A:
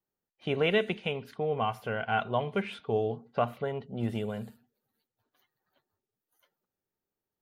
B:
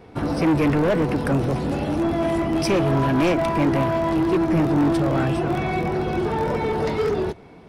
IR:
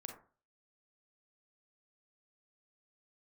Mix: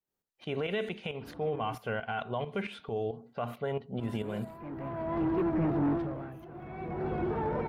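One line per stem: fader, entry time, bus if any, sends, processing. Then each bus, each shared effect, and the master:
+3.0 dB, 0.00 s, send -15.5 dB, tremolo saw up 4.5 Hz, depth 75%
-8.5 dB, 1.05 s, muted 1.75–3.98 s, no send, low-pass 1.9 kHz 12 dB/octave; vibrato 3.7 Hz 34 cents; auto duck -17 dB, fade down 0.50 s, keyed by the first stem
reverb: on, RT60 0.40 s, pre-delay 32 ms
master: peak limiter -24 dBFS, peak gain reduction 11 dB

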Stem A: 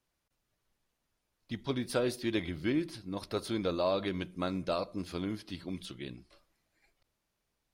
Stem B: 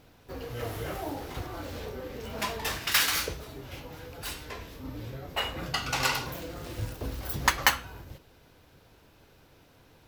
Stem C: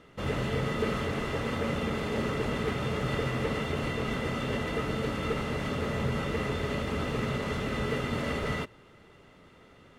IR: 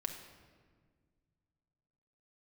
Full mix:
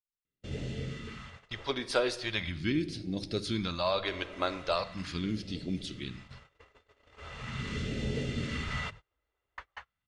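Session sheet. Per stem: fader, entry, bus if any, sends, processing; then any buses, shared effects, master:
+1.5 dB, 0.00 s, send -4.5 dB, none
-19.0 dB, 2.10 s, send -24 dB, low-pass 1.9 kHz 12 dB/octave
-5.5 dB, 0.25 s, muted 1.72–4.05 s, no send, hum notches 50/100/150/200/250 Hz; level rider gain up to 5 dB; auto duck -15 dB, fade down 0.90 s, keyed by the first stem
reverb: on, RT60 1.7 s, pre-delay 5 ms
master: gate -43 dBFS, range -29 dB; low-pass 8 kHz 24 dB/octave; phase shifter stages 2, 0.4 Hz, lowest notch 160–1100 Hz

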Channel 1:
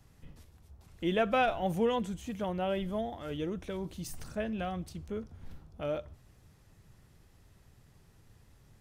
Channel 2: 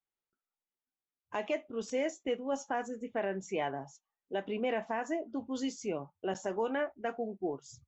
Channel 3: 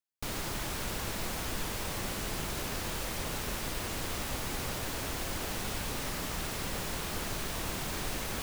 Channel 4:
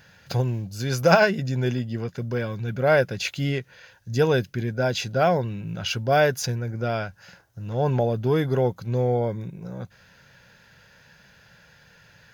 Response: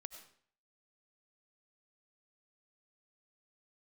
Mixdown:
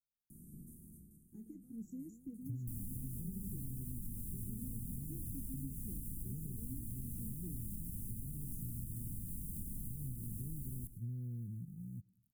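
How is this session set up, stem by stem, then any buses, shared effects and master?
-8.5 dB, 0.30 s, no bus, no send, spectral levelling over time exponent 0.4; tilt EQ +1.5 dB/octave; wow and flutter 110 cents; auto duck -13 dB, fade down 0.35 s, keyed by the second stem
-1.0 dB, 0.00 s, no bus, no send, none
-1.5 dB, 2.45 s, bus A, send -3 dB, none
-13.0 dB, 2.15 s, bus A, send -5 dB, high-order bell 1.7 kHz -11.5 dB 1 oct
bus A: 0.0 dB, bit crusher 10-bit; compression, threshold -35 dBFS, peak gain reduction 10.5 dB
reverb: on, RT60 0.55 s, pre-delay 55 ms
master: inverse Chebyshev band-stop 560–4700 Hz, stop band 50 dB; peaking EQ 1 kHz +11 dB 0.4 oct; compression, threshold -39 dBFS, peak gain reduction 8 dB

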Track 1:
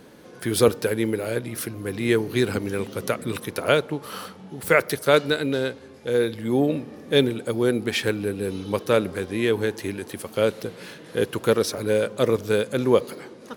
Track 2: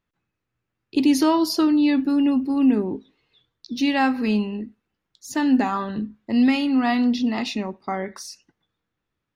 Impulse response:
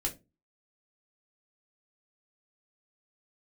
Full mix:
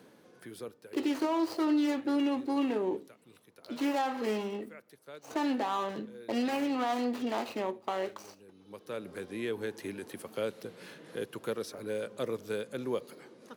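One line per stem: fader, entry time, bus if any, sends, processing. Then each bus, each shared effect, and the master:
-19.5 dB, 0.00 s, no send, level rider gain up to 11.5 dB; auto duck -21 dB, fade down 1.05 s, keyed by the second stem
-3.5 dB, 0.00 s, send -9.5 dB, median filter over 25 samples; resonant low shelf 330 Hz -11 dB, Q 1.5; peak limiter -20.5 dBFS, peak gain reduction 10.5 dB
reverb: on, RT60 0.25 s, pre-delay 3 ms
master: high-pass 120 Hz 12 dB/octave; three bands compressed up and down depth 40%

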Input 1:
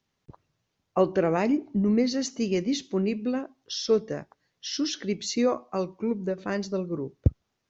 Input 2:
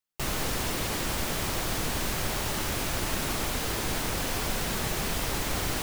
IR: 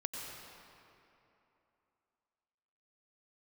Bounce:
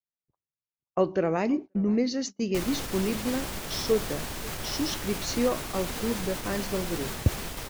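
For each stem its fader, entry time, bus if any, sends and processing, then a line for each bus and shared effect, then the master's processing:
-2.0 dB, 0.00 s, no send, echo send -22 dB, none
-2.5 dB, 2.35 s, no send, no echo send, peak limiter -22 dBFS, peak gain reduction 6.5 dB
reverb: none
echo: delay 530 ms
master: gate -34 dBFS, range -28 dB

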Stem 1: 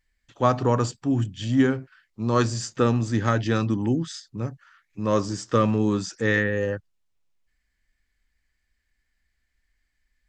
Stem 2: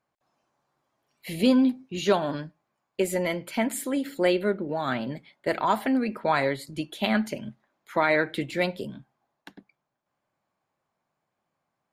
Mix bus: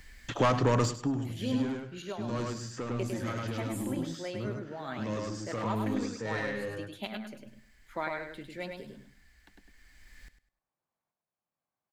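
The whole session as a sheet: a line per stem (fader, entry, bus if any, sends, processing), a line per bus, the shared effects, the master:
+1.0 dB, 0.00 s, no send, echo send -13 dB, saturation -20.5 dBFS, distortion -9 dB; three bands compressed up and down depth 70%; auto duck -12 dB, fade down 0.25 s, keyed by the second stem
-11.0 dB, 0.00 s, no send, echo send -5 dB, tremolo saw up 0.99 Hz, depth 60%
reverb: none
echo: feedback delay 102 ms, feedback 23%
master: none

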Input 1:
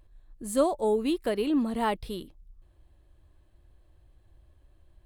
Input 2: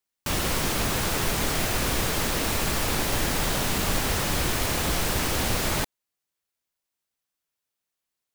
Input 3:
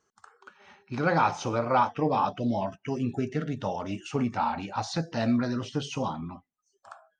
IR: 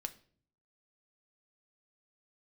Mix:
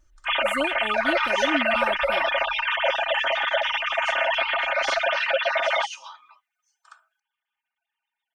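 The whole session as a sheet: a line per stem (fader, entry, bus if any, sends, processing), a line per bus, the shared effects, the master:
-7.5 dB, 0.00 s, no send, none
-2.5 dB, 0.00 s, no send, formants replaced by sine waves; peaking EQ 1 kHz -3.5 dB 0.45 oct; comb 7.4 ms, depth 71%
+0.5 dB, 0.00 s, no send, high-pass 1.3 kHz 24 dB/octave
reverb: none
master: comb 3.3 ms, depth 85%

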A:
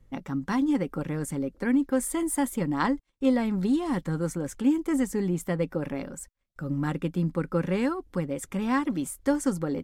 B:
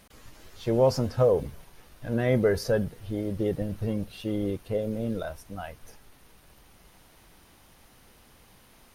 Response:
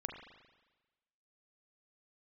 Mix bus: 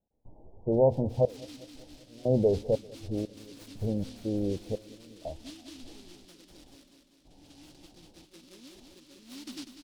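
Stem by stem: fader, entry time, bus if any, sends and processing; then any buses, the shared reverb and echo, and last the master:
-16.0 dB, 0.60 s, no send, echo send -12 dB, steep low-pass 1 kHz 48 dB/octave; comb 3.1 ms, depth 77%; delay time shaken by noise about 3.9 kHz, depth 0.3 ms; auto duck -21 dB, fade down 0.80 s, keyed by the second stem
-1.0 dB, 0.00 s, no send, echo send -23 dB, steep low-pass 890 Hz 72 dB/octave; hum notches 60/120 Hz; trance gate ".xxxx..x.xx.x." 60 bpm -24 dB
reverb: none
echo: feedback delay 196 ms, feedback 57%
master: none

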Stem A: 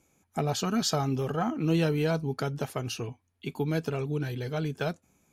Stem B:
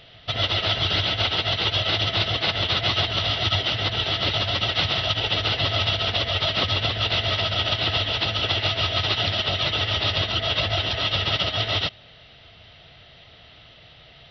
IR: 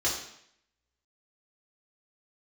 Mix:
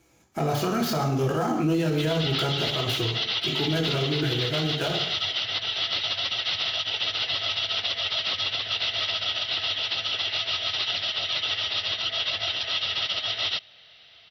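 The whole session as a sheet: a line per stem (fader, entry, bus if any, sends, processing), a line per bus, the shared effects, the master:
+1.0 dB, 0.00 s, send -3.5 dB, dead-time distortion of 0.066 ms
-7.5 dB, 1.70 s, no send, tilt EQ +3.5 dB/octave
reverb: on, RT60 0.70 s, pre-delay 3 ms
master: peak limiter -16.5 dBFS, peak gain reduction 12 dB

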